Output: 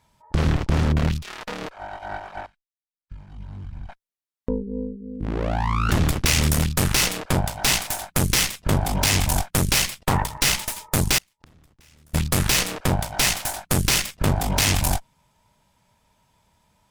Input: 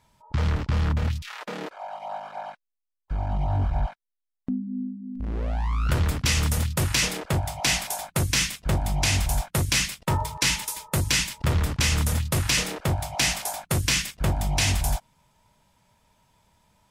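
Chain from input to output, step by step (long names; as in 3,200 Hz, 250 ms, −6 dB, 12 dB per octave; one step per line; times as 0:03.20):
harmonic generator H 6 −8 dB, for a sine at −10.5 dBFS
0:02.46–0:03.89: guitar amp tone stack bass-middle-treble 6-0-2
0:11.18–0:12.14: gate with flip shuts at −23 dBFS, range −35 dB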